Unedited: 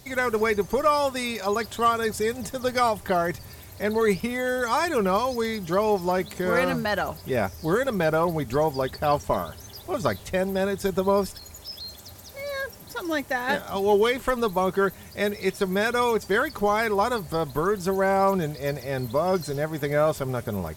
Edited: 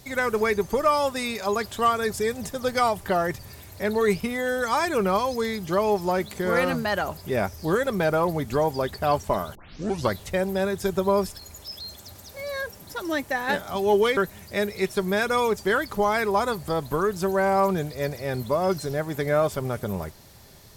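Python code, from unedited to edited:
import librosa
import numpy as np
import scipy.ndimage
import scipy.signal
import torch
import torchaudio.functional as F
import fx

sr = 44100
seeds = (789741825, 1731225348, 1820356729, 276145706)

y = fx.edit(x, sr, fx.tape_start(start_s=9.55, length_s=0.56),
    fx.cut(start_s=14.17, length_s=0.64), tone=tone)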